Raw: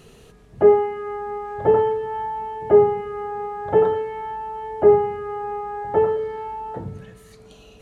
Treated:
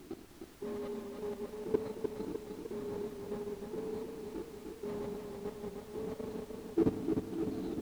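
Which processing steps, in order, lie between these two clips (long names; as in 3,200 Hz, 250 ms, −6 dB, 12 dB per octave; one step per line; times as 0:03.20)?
formant resonators in series i
reversed playback
downward compressor 4 to 1, threshold −49 dBFS, peak gain reduction 20.5 dB
reversed playback
octave-band graphic EQ 125/250/500/1,000/2,000 Hz −9/+12/−10/−10/−12 dB
on a send: feedback delay with all-pass diffusion 608 ms, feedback 44%, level −5.5 dB
on the sum: power curve on the samples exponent 0.7
noise gate −47 dBFS, range −19 dB
high-pass filter 66 Hz
low-shelf EQ 260 Hz +5 dB
formants moved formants +5 semitones
output level in coarse steps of 14 dB
background noise pink −76 dBFS
feedback echo with a swinging delay time 304 ms, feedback 58%, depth 50 cents, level −5 dB
level +16.5 dB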